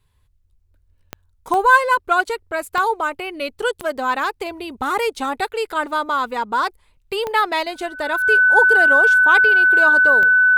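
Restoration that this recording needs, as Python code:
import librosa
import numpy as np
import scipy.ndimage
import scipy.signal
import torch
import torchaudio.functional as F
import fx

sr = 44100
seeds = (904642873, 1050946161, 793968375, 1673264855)

y = fx.fix_declick_ar(x, sr, threshold=10.0)
y = fx.notch(y, sr, hz=1500.0, q=30.0)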